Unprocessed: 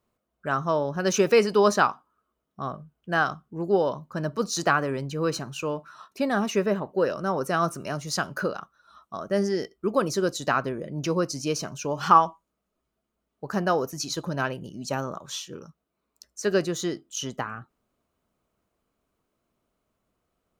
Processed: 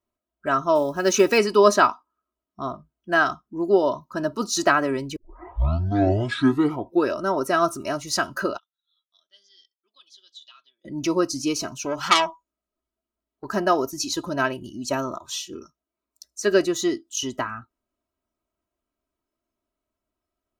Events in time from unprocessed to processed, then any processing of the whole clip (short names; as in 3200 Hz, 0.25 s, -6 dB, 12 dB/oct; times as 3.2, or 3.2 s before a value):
0.75–1.38 short-mantissa float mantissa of 4-bit
5.16 tape start 1.99 s
8.58–10.85 band-pass 3400 Hz, Q 14
11.76–13.45 core saturation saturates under 3200 Hz
whole clip: spectral noise reduction 12 dB; comb 3.1 ms, depth 66%; gain +2.5 dB